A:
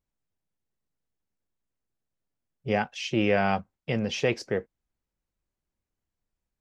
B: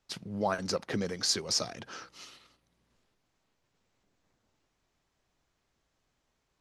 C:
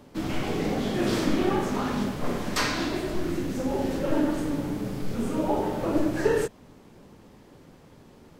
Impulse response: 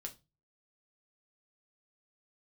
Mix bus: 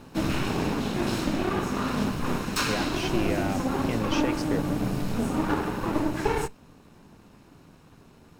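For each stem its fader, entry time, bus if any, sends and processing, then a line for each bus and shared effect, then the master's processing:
-1.0 dB, 0.00 s, no send, limiter -19 dBFS, peak gain reduction 8 dB
off
+0.5 dB, 0.00 s, send -12.5 dB, minimum comb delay 0.75 ms; notch 1300 Hz, Q 27; vocal rider 0.5 s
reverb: on, RT60 0.25 s, pre-delay 5 ms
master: dry

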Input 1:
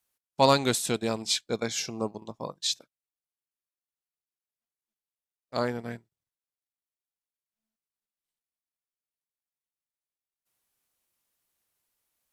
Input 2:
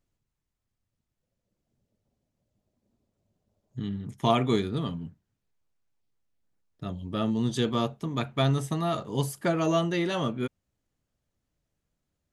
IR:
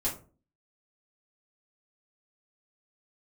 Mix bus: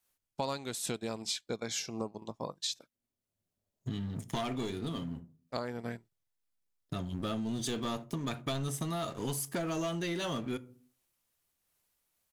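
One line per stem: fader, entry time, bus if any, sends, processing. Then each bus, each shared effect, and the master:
+3.0 dB, 0.00 s, no send, noise-modulated level, depth 65%
-8.5 dB, 0.10 s, send -19 dB, high shelf 4300 Hz +11 dB; sample leveller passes 3; auto duck -11 dB, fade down 1.45 s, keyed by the first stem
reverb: on, RT60 0.40 s, pre-delay 3 ms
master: compressor 6:1, threshold -33 dBFS, peak gain reduction 17.5 dB

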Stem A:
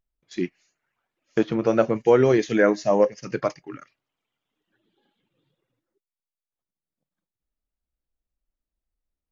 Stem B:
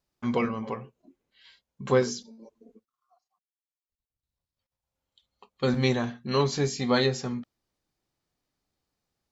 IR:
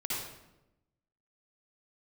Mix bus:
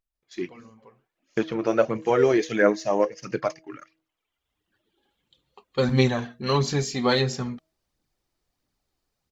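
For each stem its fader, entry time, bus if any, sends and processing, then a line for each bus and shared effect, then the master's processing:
-4.5 dB, 0.00 s, no send, low shelf 350 Hz -5.5 dB
-2.0 dB, 0.15 s, no send, auto duck -22 dB, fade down 0.35 s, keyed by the first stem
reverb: off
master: de-hum 159.9 Hz, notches 4; AGC gain up to 4 dB; phaser 1.5 Hz, delay 3.3 ms, feedback 38%

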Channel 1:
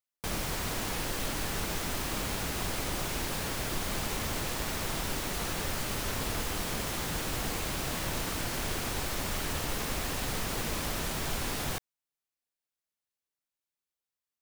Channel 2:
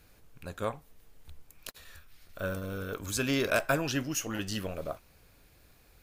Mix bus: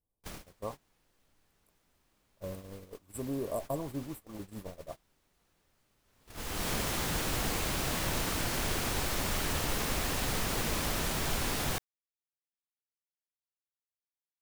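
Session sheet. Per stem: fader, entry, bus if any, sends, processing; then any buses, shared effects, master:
+1.0 dB, 0.00 s, no send, auto duck -19 dB, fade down 0.65 s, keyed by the second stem
-5.5 dB, 0.00 s, no send, FFT band-reject 1200–7400 Hz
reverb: off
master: gate -40 dBFS, range -22 dB

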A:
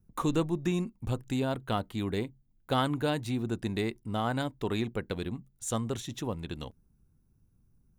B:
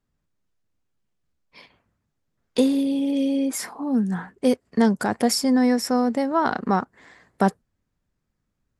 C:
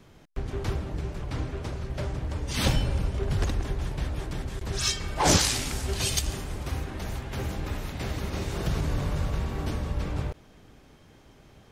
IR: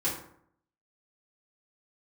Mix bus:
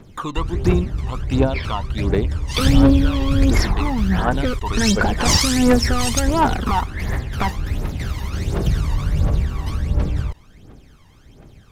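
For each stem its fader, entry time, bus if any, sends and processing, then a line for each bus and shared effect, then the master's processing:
-7.5 dB, 0.00 s, bus A, no send, high shelf 4400 Hz -11 dB
-1.5 dB, 0.00 s, bus A, no send, modulation noise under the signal 23 dB; running mean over 5 samples
+1.0 dB, 0.00 s, no bus, no send, dry
bus A: 0.0 dB, overdrive pedal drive 24 dB, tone 5500 Hz, clips at -7 dBFS; compressor, threshold -20 dBFS, peak gain reduction 8 dB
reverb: off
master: phaser 1.4 Hz, delay 1.1 ms, feedback 70%

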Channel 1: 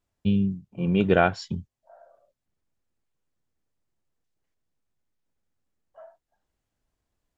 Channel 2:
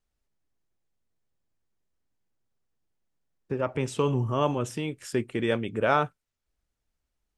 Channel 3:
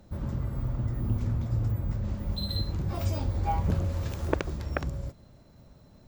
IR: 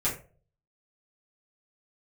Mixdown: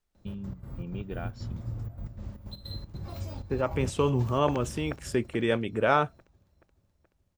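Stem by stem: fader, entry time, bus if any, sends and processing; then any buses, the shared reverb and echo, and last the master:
-11.5 dB, 0.00 s, no send, no echo send, compressor 3:1, threshold -25 dBFS, peak gain reduction 9 dB
0.0 dB, 0.00 s, no send, no echo send, dry
-8.0 dB, 0.15 s, no send, echo send -14 dB, step gate "xx.x.xx.x.xx.xxx" 156 bpm -12 dB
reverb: off
echo: feedback echo 0.427 s, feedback 59%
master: dry

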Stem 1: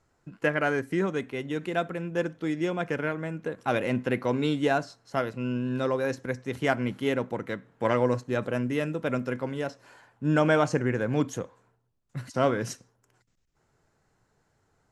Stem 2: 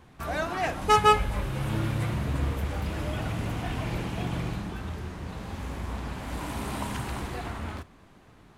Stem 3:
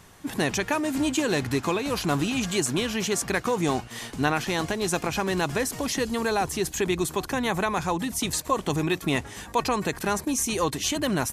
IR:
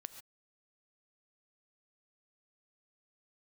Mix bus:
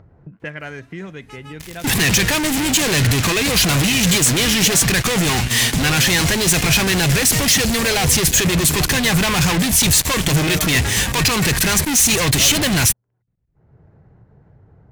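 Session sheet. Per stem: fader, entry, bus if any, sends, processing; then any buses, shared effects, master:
0.0 dB, 0.00 s, no send, HPF 43 Hz; low-pass opened by the level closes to 680 Hz, open at -20 dBFS
-11.0 dB, 0.40 s, no send, auto duck -10 dB, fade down 0.90 s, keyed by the first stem
+2.0 dB, 1.60 s, no send, fuzz box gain 39 dB, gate -47 dBFS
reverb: off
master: band shelf 560 Hz -8.5 dB 3 oct; upward compressor, threshold -28 dBFS

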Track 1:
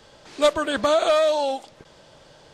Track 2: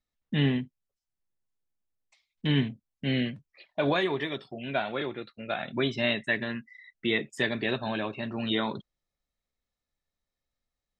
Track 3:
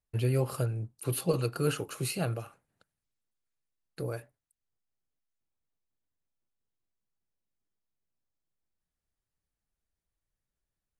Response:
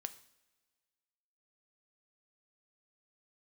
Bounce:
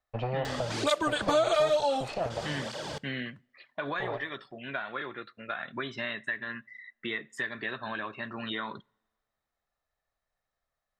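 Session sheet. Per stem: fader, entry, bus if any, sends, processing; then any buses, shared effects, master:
+2.5 dB, 0.45 s, no bus, send -7.5 dB, upward compressor, threshold -27 dBFS; tape flanging out of phase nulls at 1.1 Hz, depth 5.7 ms
-3.5 dB, 0.00 s, bus A, send -17.5 dB, band shelf 1400 Hz +9.5 dB 1.1 oct
-0.5 dB, 0.00 s, bus A, send -10 dB, minimum comb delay 1.6 ms; Bessel low-pass 3100 Hz, order 8; bell 770 Hz +14.5 dB 1.3 oct
bus A: 0.0 dB, low shelf 350 Hz -6 dB; compressor 4:1, threshold -33 dBFS, peak gain reduction 12.5 dB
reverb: on, pre-delay 3 ms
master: compressor 2:1, threshold -28 dBFS, peak gain reduction 9 dB

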